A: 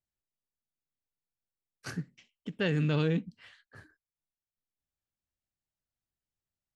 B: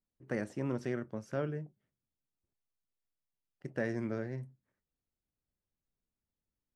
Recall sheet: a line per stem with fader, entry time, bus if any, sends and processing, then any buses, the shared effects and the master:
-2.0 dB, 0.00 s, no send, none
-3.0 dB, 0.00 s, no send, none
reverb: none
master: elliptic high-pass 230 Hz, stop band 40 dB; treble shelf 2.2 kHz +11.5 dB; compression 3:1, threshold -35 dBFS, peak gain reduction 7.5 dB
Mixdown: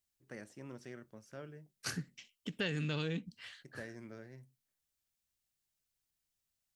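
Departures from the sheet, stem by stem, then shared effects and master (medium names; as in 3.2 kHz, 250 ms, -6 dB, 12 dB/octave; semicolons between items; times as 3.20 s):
stem B -3.0 dB -> -14.0 dB; master: missing elliptic high-pass 230 Hz, stop band 40 dB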